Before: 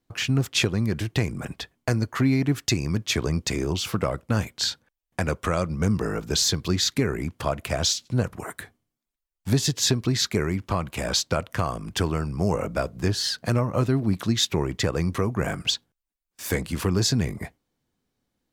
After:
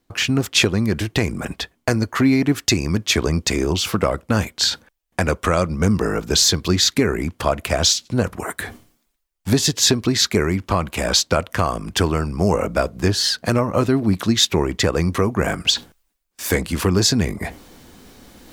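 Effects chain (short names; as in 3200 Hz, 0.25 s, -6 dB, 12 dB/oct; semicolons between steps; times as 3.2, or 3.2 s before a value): bell 130 Hz -7.5 dB 0.54 oct; reverse; upward compressor, threshold -30 dBFS; reverse; gain +7 dB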